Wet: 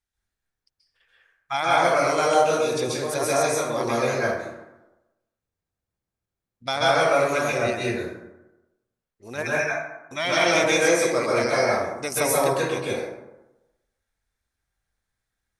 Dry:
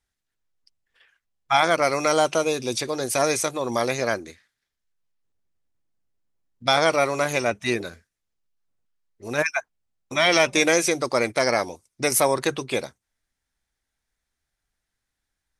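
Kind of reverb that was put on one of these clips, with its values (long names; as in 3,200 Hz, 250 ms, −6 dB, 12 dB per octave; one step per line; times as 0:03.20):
dense smooth reverb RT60 0.99 s, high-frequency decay 0.45×, pre-delay 120 ms, DRR −7 dB
level −7.5 dB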